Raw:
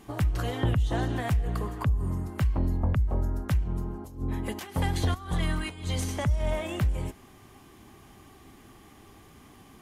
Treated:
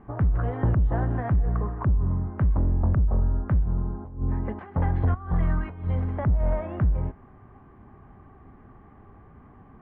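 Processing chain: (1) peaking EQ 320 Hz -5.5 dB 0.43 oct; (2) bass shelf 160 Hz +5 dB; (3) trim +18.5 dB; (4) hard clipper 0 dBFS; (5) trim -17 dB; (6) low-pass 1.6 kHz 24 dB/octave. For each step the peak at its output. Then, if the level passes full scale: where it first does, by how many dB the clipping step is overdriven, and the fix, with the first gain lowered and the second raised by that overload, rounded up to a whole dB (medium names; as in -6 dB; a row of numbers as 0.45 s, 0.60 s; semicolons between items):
-17.0 dBFS, -13.5 dBFS, +5.0 dBFS, 0.0 dBFS, -17.0 dBFS, -16.5 dBFS; step 3, 5.0 dB; step 3 +13.5 dB, step 5 -12 dB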